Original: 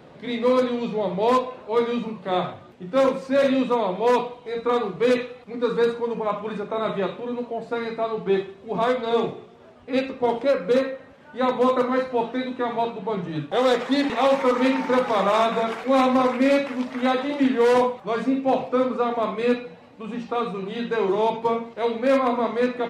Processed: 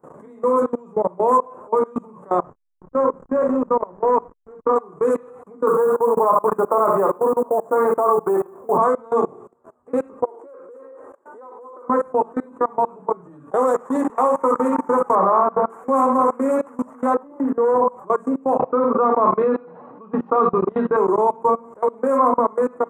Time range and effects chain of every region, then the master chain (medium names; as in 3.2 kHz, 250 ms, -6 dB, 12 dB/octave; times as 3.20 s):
2.39–4.76 s: hysteresis with a dead band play -25.5 dBFS + distance through air 150 m
5.67–8.78 s: peaking EQ 740 Hz +11 dB 2.8 oct + hum notches 60/120/180/240/300/360/420 Hz + short-mantissa float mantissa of 4-bit
10.24–11.88 s: resonant low shelf 260 Hz -10 dB, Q 3 + compression 10:1, threshold -25 dBFS
15.15–15.70 s: block-companded coder 5-bit + low-pass 1.8 kHz
17.14–17.88 s: jump at every zero crossing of -38.5 dBFS + low-pass 1.1 kHz 6 dB/octave
18.59–20.97 s: Chebyshev band-pass 130–4200 Hz, order 4 + treble shelf 3.3 kHz +2.5 dB + level flattener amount 50%
whole clip: treble shelf 2 kHz -2 dB; level held to a coarse grid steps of 24 dB; FFT filter 110 Hz 0 dB, 470 Hz +8 dB, 690 Hz +5 dB, 1.1 kHz +14 dB, 2.3 kHz -13 dB, 4.4 kHz -27 dB, 7.4 kHz +12 dB